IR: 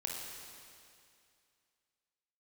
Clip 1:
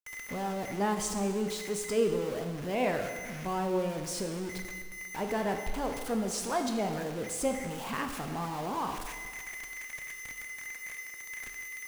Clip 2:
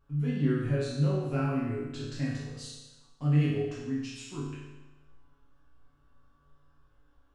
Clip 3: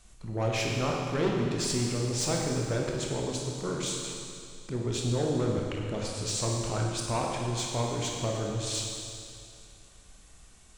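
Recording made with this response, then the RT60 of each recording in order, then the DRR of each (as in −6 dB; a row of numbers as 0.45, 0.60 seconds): 3; 1.6, 1.1, 2.4 seconds; 4.5, −8.5, −1.5 decibels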